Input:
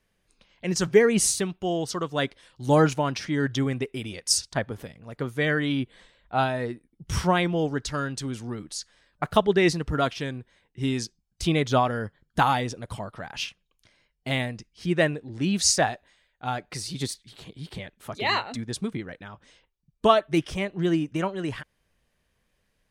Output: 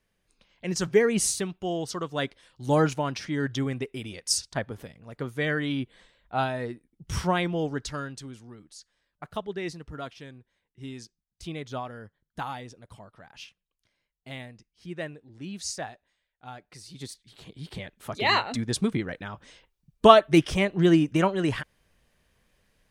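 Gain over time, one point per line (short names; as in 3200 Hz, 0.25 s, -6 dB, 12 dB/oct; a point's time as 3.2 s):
7.85 s -3 dB
8.49 s -13 dB
16.81 s -13 dB
17.52 s -2 dB
18.8 s +4.5 dB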